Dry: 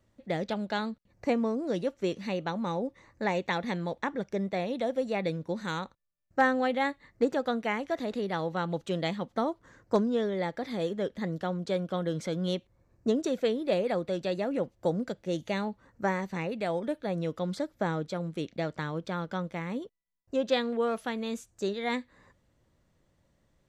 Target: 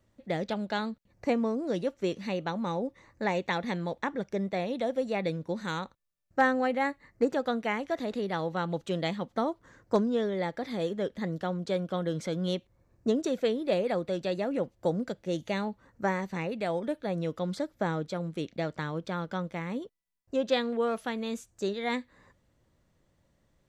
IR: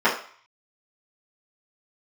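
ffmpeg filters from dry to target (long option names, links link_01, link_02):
-filter_complex "[0:a]asettb=1/sr,asplit=3[link_01][link_02][link_03];[link_01]atrim=end=6.524[link_04];[link_02]atrim=start=6.52:end=7.3,asetpts=PTS-STARTPTS,afade=type=in:duration=0.004:curve=qsin,afade=type=out:start_time=0.776:duration=0.004:curve=qsin,equalizer=frequency=3500:width_type=o:width=0.24:gain=-13.5[link_05];[link_03]atrim=start=7.296[link_06];[link_04][link_05]acrossfade=duration=0.004:curve1=hsin:curve2=qsin[link_07];[link_07][link_06]acrossfade=duration=0.004:curve1=qsin:curve2=hsin"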